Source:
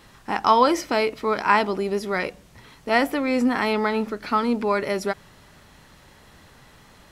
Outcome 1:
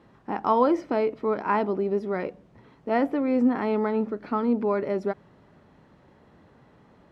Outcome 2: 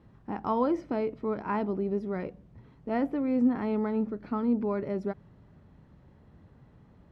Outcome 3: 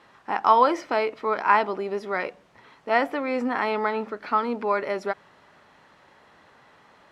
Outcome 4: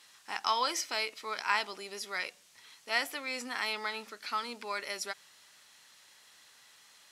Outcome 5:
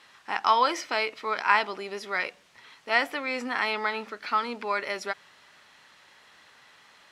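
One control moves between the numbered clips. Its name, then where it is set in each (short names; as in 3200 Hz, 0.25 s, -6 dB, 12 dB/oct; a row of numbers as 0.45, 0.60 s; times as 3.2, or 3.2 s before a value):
band-pass, frequency: 300, 120, 930, 6900, 2500 Hz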